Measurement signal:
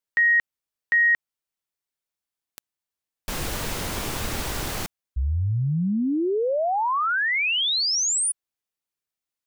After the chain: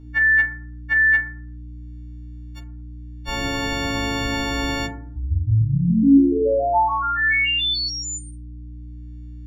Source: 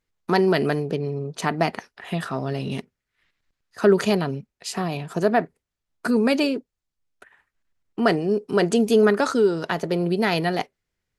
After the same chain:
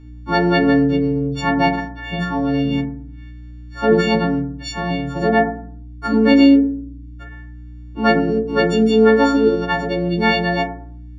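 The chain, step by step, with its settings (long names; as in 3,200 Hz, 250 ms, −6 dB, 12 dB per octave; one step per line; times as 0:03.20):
every partial snapped to a pitch grid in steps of 4 semitones
dynamic equaliser 180 Hz, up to +5 dB, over −40 dBFS, Q 5.2
upward compression 1.5 to 1, threshold −29 dBFS
mains hum 60 Hz, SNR 20 dB
high-frequency loss of the air 210 metres
feedback delay network reverb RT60 0.53 s, low-frequency decay 1.4×, high-frequency decay 0.3×, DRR 1.5 dB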